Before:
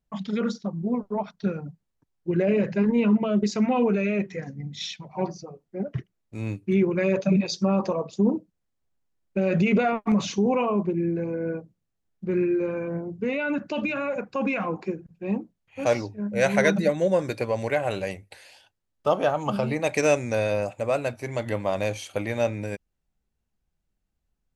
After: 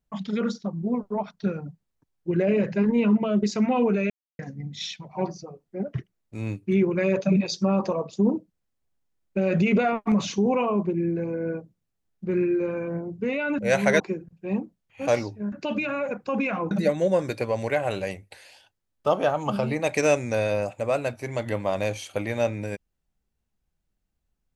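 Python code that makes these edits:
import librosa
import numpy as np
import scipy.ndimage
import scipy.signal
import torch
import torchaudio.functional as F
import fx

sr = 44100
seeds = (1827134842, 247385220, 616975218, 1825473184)

y = fx.edit(x, sr, fx.silence(start_s=4.1, length_s=0.29),
    fx.swap(start_s=13.59, length_s=1.19, other_s=16.3, other_length_s=0.41), tone=tone)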